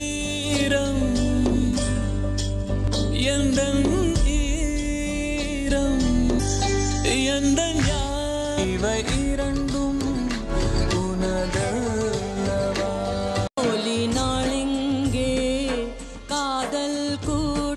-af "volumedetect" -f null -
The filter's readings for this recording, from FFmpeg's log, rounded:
mean_volume: -22.7 dB
max_volume: -9.6 dB